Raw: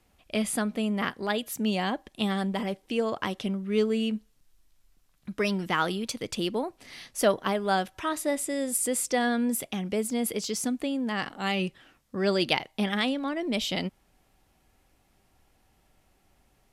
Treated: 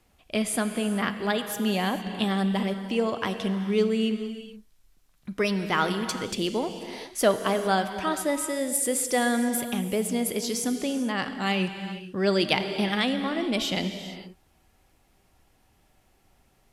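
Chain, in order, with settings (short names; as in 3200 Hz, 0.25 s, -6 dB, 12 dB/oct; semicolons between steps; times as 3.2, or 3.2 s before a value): non-linear reverb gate 0.48 s flat, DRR 8 dB; gain +1.5 dB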